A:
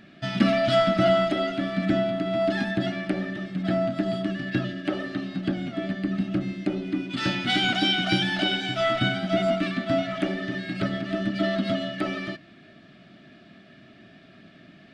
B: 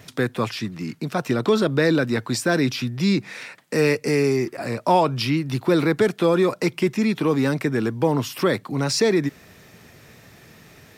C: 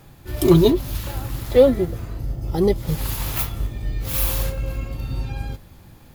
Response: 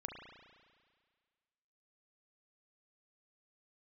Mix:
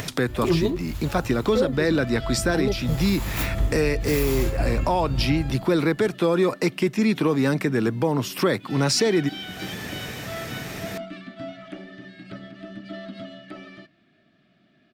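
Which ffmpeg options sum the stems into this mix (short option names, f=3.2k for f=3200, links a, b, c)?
-filter_complex "[0:a]adelay=1500,volume=-11.5dB[a];[1:a]acompressor=mode=upward:threshold=-26dB:ratio=2.5,volume=2.5dB[b];[2:a]highshelf=f=5.2k:g=-8,dynaudnorm=f=150:g=11:m=11.5dB,equalizer=f=7.2k:t=o:w=0.2:g=7,volume=-5.5dB[c];[a][b][c]amix=inputs=3:normalize=0,alimiter=limit=-11.5dB:level=0:latency=1:release=473"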